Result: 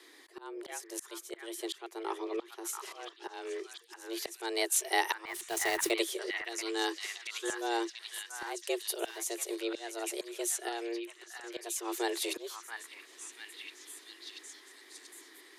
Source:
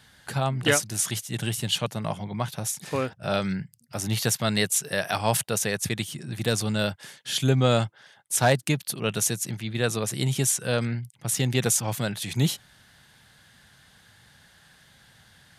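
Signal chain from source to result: 6.52–7.50 s: fifteen-band graphic EQ 400 Hz -11 dB, 1 kHz +4 dB, 6.3 kHz +7 dB; frequency shift +230 Hz; 5.26–5.91 s: companded quantiser 4-bit; 10.68–11.44 s: compression 4:1, threshold -33 dBFS, peak gain reduction 11 dB; slow attack 702 ms; on a send: repeats whose band climbs or falls 684 ms, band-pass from 1.5 kHz, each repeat 0.7 oct, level -2 dB; on the sum: trim -1.5 dB

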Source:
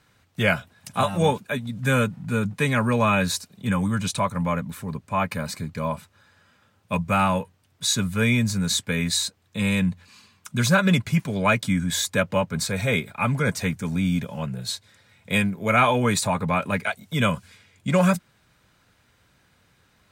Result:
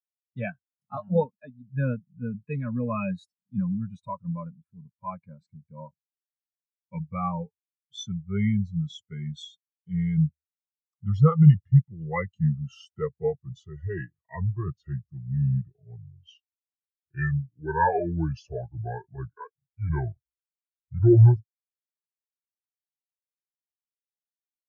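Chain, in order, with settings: gliding tape speed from 107% -> 56%; spectral contrast expander 2.5:1

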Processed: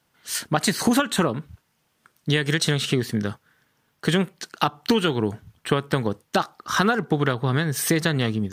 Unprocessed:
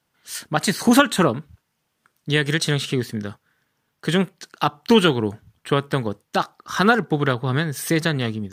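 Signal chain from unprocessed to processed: compression 6:1, threshold -21 dBFS, peak gain reduction 12 dB; trim +4 dB

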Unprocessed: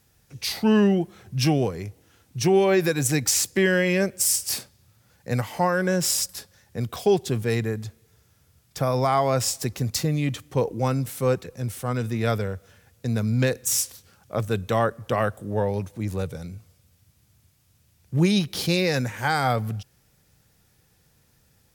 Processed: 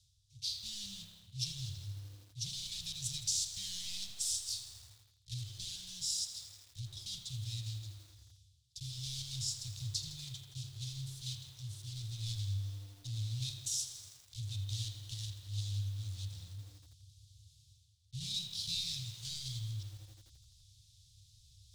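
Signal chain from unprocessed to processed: block-companded coder 3-bit; Chebyshev band-stop 110–3600 Hz, order 4; bass shelf 120 Hz -8 dB; reverse; upward compressor, threshold -40 dBFS; reverse; distance through air 91 m; reverberation RT60 1.3 s, pre-delay 30 ms, DRR 4.5 dB; bit-crushed delay 81 ms, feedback 80%, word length 8-bit, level -12.5 dB; trim -4.5 dB

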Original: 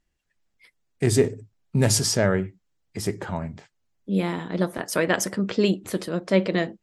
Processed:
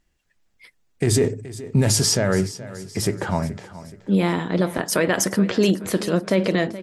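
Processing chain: peak limiter -15.5 dBFS, peak gain reduction 9.5 dB; on a send: feedback delay 425 ms, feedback 44%, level -16 dB; on the sum: trim +6.5 dB

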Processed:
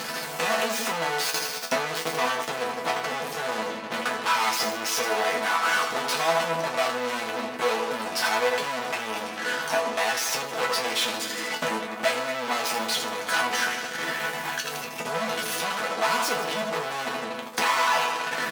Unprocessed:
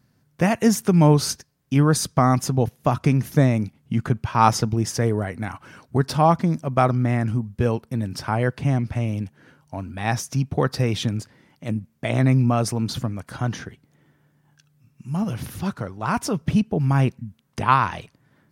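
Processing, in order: tracing distortion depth 0.18 ms; peak limiter -13 dBFS, peak gain reduction 10.5 dB; 1.30–3.93 s: tilt EQ -2 dB/octave; feedback delay 80 ms, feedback 50%, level -13 dB; upward compressor, threshold -25 dBFS; fuzz box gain 47 dB, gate -48 dBFS; treble shelf 7.7 kHz -7 dB; transient shaper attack +9 dB, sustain -7 dB; high-pass 600 Hz 12 dB/octave; chord resonator E3 sus4, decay 0.24 s; trim +8.5 dB

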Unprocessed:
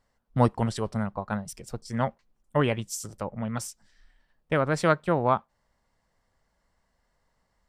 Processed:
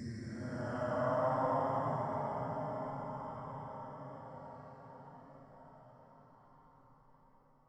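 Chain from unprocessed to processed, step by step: resonances exaggerated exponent 1.5; chord resonator C#2 major, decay 0.59 s; Paulstretch 19×, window 0.05 s, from 1.96 s; trim +6.5 dB

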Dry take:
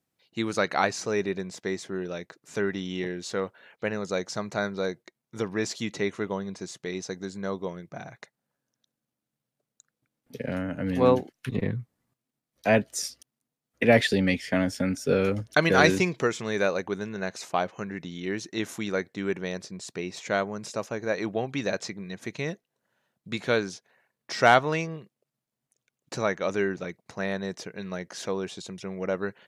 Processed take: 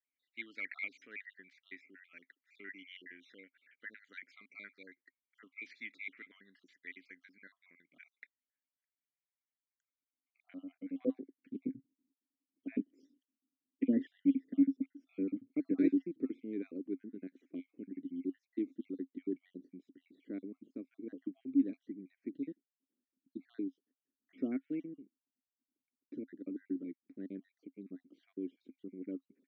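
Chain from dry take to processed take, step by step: random holes in the spectrogram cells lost 48%; band-pass sweep 1.8 kHz -> 320 Hz, 9.77–11.54 s; vowel filter i; trim +8 dB

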